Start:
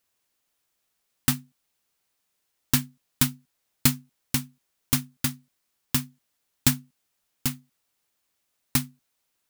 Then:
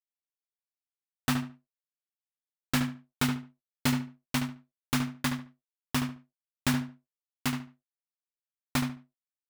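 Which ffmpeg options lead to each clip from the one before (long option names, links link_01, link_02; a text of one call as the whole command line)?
ffmpeg -i in.wav -filter_complex "[0:a]asplit=2[link_01][link_02];[link_02]highpass=frequency=720:poles=1,volume=25dB,asoftclip=type=tanh:threshold=-2.5dB[link_03];[link_01][link_03]amix=inputs=2:normalize=0,lowpass=frequency=1100:poles=1,volume=-6dB,aeval=exprs='sgn(val(0))*max(abs(val(0))-0.00473,0)':channel_layout=same,asplit=2[link_04][link_05];[link_05]adelay=72,lowpass=frequency=3100:poles=1,volume=-6.5dB,asplit=2[link_06][link_07];[link_07]adelay=72,lowpass=frequency=3100:poles=1,volume=0.24,asplit=2[link_08][link_09];[link_09]adelay=72,lowpass=frequency=3100:poles=1,volume=0.24[link_10];[link_04][link_06][link_08][link_10]amix=inputs=4:normalize=0,volume=-4.5dB" out.wav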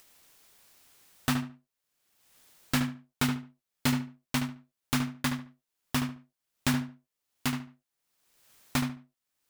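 ffmpeg -i in.wav -af "acompressor=mode=upward:threshold=-32dB:ratio=2.5" out.wav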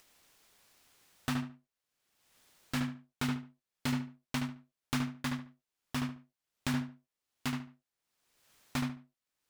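ffmpeg -i in.wav -af "highshelf=frequency=9400:gain=-7.5,alimiter=limit=-18.5dB:level=0:latency=1:release=101,volume=-2.5dB" out.wav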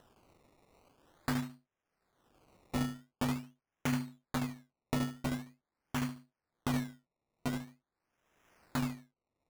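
ffmpeg -i in.wav -af "acrusher=samples=19:mix=1:aa=0.000001:lfo=1:lforange=19:lforate=0.45" out.wav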